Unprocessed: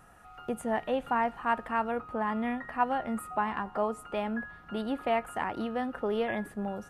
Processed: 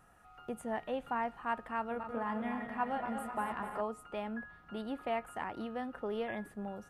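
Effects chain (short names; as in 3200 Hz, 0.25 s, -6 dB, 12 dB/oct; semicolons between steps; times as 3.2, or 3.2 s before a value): 1.78–3.81 regenerating reverse delay 0.128 s, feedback 76%, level -7 dB; gain -7 dB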